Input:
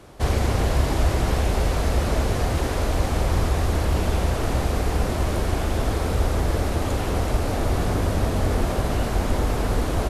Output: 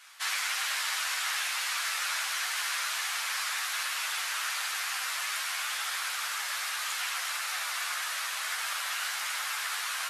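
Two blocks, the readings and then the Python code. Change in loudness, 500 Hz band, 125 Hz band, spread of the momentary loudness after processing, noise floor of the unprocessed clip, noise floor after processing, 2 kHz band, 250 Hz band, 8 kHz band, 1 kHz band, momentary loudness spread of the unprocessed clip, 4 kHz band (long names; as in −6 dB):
−6.5 dB, −28.5 dB, below −40 dB, 2 LU, −26 dBFS, −35 dBFS, +3.0 dB, below −40 dB, +4.0 dB, −7.0 dB, 2 LU, +4.0 dB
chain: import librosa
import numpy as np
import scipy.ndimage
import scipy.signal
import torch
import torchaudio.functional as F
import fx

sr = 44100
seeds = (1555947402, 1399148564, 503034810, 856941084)

y = scipy.signal.sosfilt(scipy.signal.butter(4, 1400.0, 'highpass', fs=sr, output='sos'), x)
y = fx.ensemble(y, sr)
y = F.gain(torch.from_numpy(y), 7.0).numpy()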